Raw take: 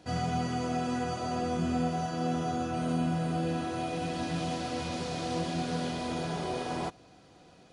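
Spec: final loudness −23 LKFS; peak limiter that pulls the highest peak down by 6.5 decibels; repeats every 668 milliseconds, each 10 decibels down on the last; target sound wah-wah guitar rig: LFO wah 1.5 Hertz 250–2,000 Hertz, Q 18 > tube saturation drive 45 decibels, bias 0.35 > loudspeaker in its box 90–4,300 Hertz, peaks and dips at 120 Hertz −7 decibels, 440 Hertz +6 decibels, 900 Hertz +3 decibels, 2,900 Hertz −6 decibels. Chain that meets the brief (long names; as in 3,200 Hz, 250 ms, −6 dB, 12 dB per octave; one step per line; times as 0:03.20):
brickwall limiter −25.5 dBFS
repeating echo 668 ms, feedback 32%, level −10 dB
LFO wah 1.5 Hz 250–2,000 Hz, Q 18
tube saturation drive 45 dB, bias 0.35
loudspeaker in its box 90–4,300 Hz, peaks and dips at 120 Hz −7 dB, 440 Hz +6 dB, 900 Hz +3 dB, 2,900 Hz −6 dB
level +29.5 dB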